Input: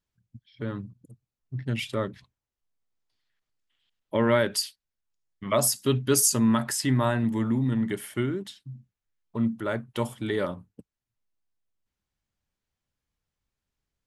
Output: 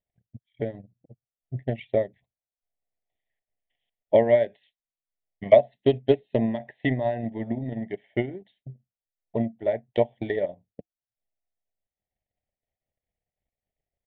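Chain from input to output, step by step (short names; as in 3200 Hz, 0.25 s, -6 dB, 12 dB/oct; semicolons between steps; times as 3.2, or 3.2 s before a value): downsampling 8000 Hz; transient shaper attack +11 dB, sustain -9 dB; EQ curve 320 Hz 0 dB, 710 Hz +14 dB, 1300 Hz -25 dB, 1900 Hz +6 dB, 2700 Hz -3 dB; gain -7.5 dB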